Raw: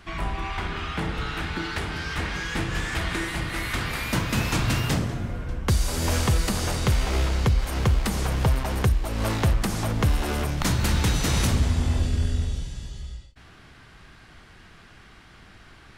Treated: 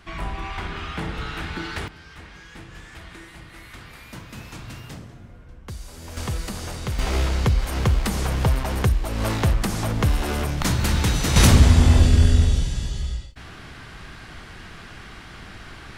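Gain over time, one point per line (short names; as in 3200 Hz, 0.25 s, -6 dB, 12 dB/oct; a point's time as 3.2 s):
-1 dB
from 1.88 s -14 dB
from 6.17 s -6 dB
from 6.99 s +1.5 dB
from 11.36 s +9 dB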